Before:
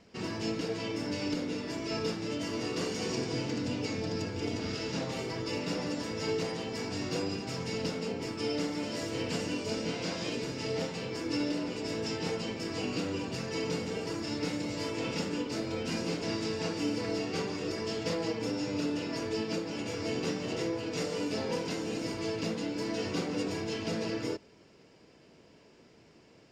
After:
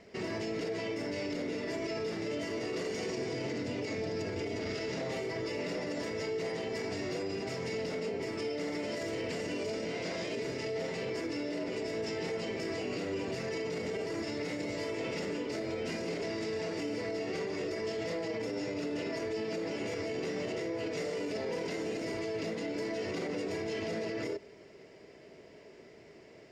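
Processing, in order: thirty-one-band EQ 400 Hz +10 dB, 630 Hz +9 dB, 2000 Hz +10 dB; limiter -28 dBFS, peak gain reduction 11.5 dB

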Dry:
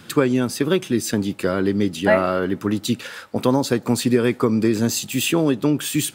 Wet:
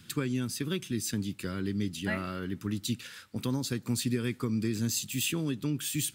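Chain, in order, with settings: passive tone stack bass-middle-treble 6-0-2; gain +7.5 dB

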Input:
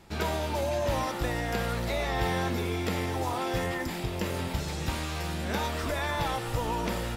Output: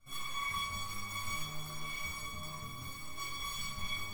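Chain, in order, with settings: self-modulated delay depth 0.87 ms; resonator 650 Hz, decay 0.2 s, harmonics all, mix 100%; shoebox room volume 1300 m³, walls mixed, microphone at 3.8 m; speed mistake 45 rpm record played at 78 rpm

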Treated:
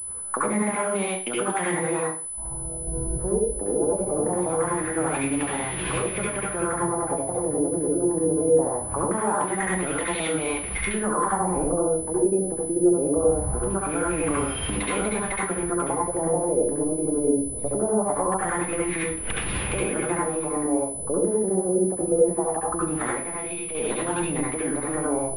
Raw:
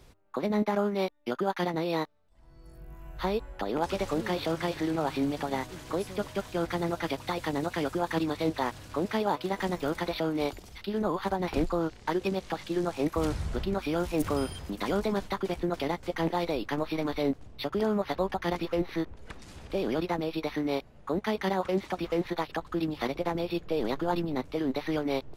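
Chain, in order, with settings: recorder AGC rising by 62 dB/s; LFO low-pass sine 0.22 Hz 410–2800 Hz; 2–2.87 level quantiser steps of 18 dB; 23.11–23.75 resonator 97 Hz, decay 0.34 s, harmonics all, mix 70%; reverb RT60 0.40 s, pre-delay 66 ms, DRR -4 dB; pulse-width modulation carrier 10000 Hz; gain -3 dB

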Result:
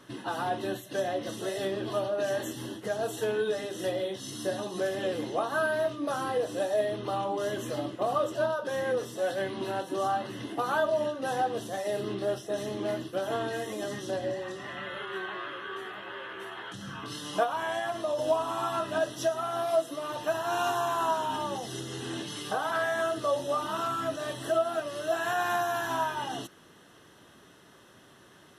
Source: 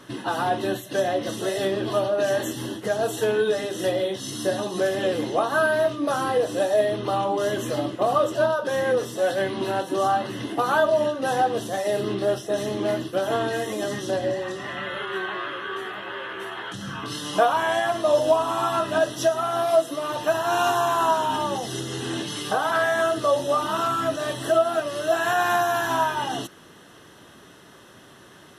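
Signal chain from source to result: 17.43–18.19 compressor, threshold -20 dBFS, peak gain reduction 6 dB; gain -7 dB

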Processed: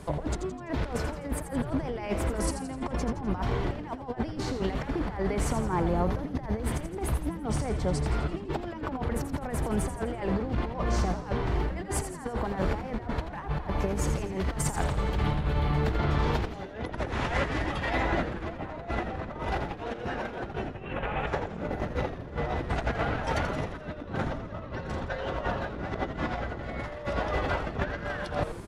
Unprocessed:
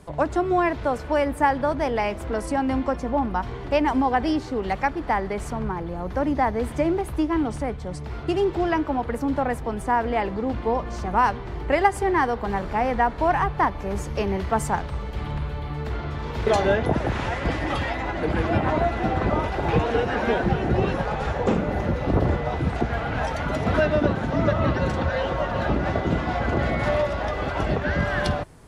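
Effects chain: 20.74–21.27 resonant high shelf 3700 Hz -10 dB, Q 3; negative-ratio compressor -29 dBFS, ratio -0.5; frequency-shifting echo 84 ms, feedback 51%, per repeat -120 Hz, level -9 dB; gain -1.5 dB

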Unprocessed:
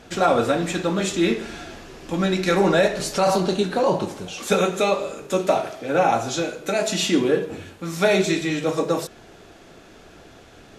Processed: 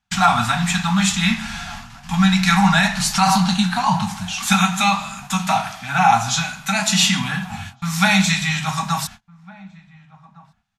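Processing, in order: gate -39 dBFS, range -36 dB; elliptic band-stop 210–800 Hz, stop band 40 dB; outdoor echo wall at 250 m, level -22 dB; gain +8.5 dB

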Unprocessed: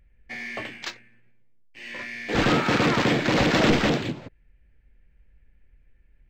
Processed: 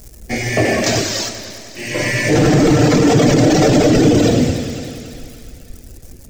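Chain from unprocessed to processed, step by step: octaver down 1 oct, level -2 dB; 1.9–3.93 comb 6.7 ms, depth 56%; thin delay 0.279 s, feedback 49%, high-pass 1500 Hz, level -12 dB; non-linear reverb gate 0.43 s flat, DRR -6 dB; crackle 350/s -47 dBFS; band shelf 1900 Hz -14 dB 2.6 oct; reverb removal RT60 1.4 s; low shelf 160 Hz -8.5 dB; notch 570 Hz, Q 17; maximiser +27.5 dB; warbling echo 98 ms, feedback 77%, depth 114 cents, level -12 dB; gain -4 dB

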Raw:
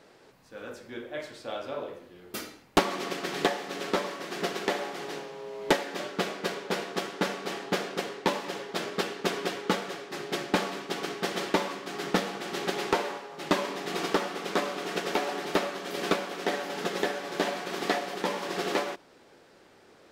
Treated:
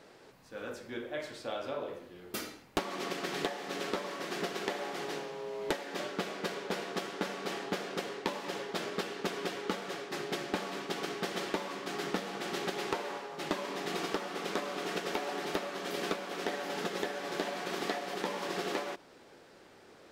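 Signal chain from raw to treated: compressor 3:1, threshold -33 dBFS, peak gain reduction 11.5 dB

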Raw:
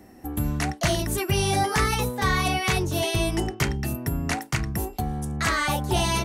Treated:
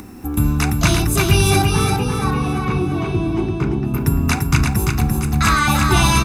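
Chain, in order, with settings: comb 0.8 ms, depth 61%; upward compressor, threshold -37 dBFS; bit-crush 10-bit; 1.62–3.94 band-pass 280 Hz, Q 0.63; feedback echo 0.342 s, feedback 43%, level -4 dB; reverb RT60 0.40 s, pre-delay 37 ms, DRR 17 dB; gain +6 dB

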